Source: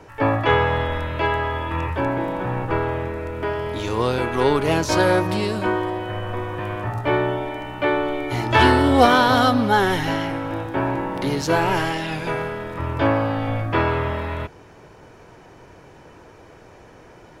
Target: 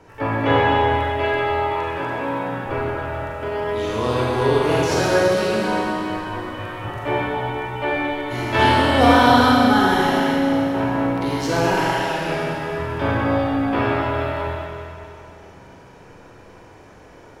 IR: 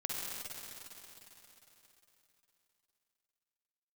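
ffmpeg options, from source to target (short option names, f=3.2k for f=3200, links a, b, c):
-filter_complex "[0:a]asettb=1/sr,asplit=3[a][b][c];[a]atrim=end=1.514[d];[b]atrim=start=1.51:end=2.66,asetpts=PTS-STARTPTS,afade=t=in:d=0.004:c=qsin,afade=t=out:st=1.146:d=0.004:c=qsin,highpass=f=290:p=1[e];[c]atrim=start=2.656[f];[d][e]acrossfade=d=0.004:c1=hsin:c2=qsin[g];[g][f]acrossfade=d=0.004:c1=qsin:c2=hsin[h];[1:a]atrim=start_sample=2205,asetrate=61740,aresample=44100[i];[h][i]afir=irnorm=-1:irlink=0,volume=1dB"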